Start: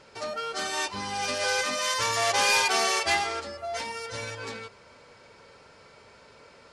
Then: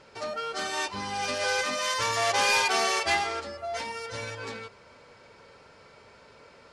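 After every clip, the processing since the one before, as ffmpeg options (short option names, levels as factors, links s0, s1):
-af "highshelf=f=5600:g=-5"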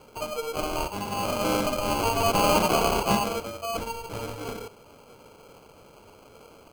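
-af "acrusher=samples=24:mix=1:aa=0.000001,volume=1.33"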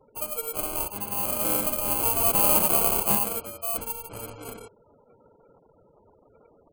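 -af "afftfilt=real='re*gte(hypot(re,im),0.00631)':imag='im*gte(hypot(re,im),0.00631)':win_size=1024:overlap=0.75,aexciter=amount=8.7:drive=6.1:freq=8000,volume=0.531"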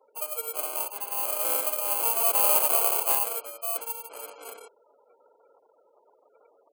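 -af "highpass=f=440:w=0.5412,highpass=f=440:w=1.3066,volume=0.891"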